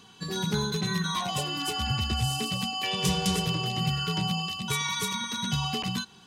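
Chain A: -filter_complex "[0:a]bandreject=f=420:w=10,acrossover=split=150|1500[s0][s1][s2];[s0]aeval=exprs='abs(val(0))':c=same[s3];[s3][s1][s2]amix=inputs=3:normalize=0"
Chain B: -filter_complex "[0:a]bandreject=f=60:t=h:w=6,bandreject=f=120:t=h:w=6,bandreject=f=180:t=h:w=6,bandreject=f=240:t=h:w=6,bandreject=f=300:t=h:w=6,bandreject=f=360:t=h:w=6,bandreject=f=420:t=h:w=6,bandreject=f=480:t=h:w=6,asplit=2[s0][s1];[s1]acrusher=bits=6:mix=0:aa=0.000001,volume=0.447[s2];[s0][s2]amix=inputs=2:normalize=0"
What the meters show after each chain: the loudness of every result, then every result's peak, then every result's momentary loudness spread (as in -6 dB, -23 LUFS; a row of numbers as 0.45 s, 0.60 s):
-29.5 LUFS, -25.5 LUFS; -13.5 dBFS, -10.5 dBFS; 3 LU, 3 LU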